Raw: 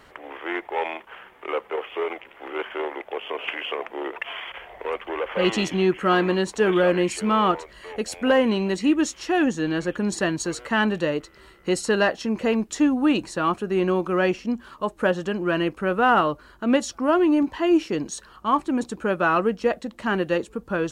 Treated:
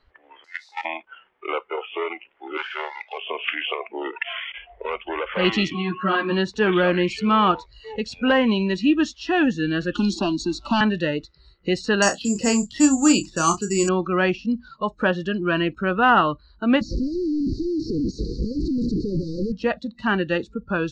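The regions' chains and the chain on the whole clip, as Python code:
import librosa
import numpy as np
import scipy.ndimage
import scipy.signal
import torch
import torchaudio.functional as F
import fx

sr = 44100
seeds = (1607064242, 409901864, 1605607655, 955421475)

y = fx.chain(x, sr, fx.crossing_spikes(level_db=-30.0),
    fx.highpass(hz=1100.0, slope=12),
    fx.level_steps(step_db=15), at=(0.44, 0.85))
y = fx.chain(y, sr, fx.law_mismatch(coded='mu'),
    fx.highpass(hz=780.0, slope=12), at=(2.57, 3.18))
y = fx.lowpass(y, sr, hz=3800.0, slope=12, at=(5.72, 6.3), fade=0.02)
y = fx.dmg_tone(y, sr, hz=1100.0, level_db=-35.0, at=(5.72, 6.3), fade=0.02)
y = fx.ensemble(y, sr, at=(5.72, 6.3), fade=0.02)
y = fx.chain(y, sr, fx.leveller(passes=1),
    fx.fixed_phaser(hz=490.0, stages=6),
    fx.band_squash(depth_pct=70), at=(9.94, 10.81))
y = fx.chain(y, sr, fx.dynamic_eq(hz=2000.0, q=1.9, threshold_db=-37.0, ratio=4.0, max_db=-3),
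    fx.doubler(ms=30.0, db=-8),
    fx.resample_bad(factor=6, down='filtered', up='zero_stuff'), at=(12.02, 13.89))
y = fx.chain(y, sr, fx.clip_1bit(),
    fx.cheby1_bandstop(low_hz=520.0, high_hz=4400.0, order=5),
    fx.spacing_loss(db_at_10k=26), at=(16.81, 19.52))
y = scipy.signal.sosfilt(scipy.signal.butter(4, 4800.0, 'lowpass', fs=sr, output='sos'), y)
y = fx.dynamic_eq(y, sr, hz=500.0, q=1.1, threshold_db=-34.0, ratio=4.0, max_db=-6)
y = fx.noise_reduce_blind(y, sr, reduce_db=21)
y = y * librosa.db_to_amplitude(4.0)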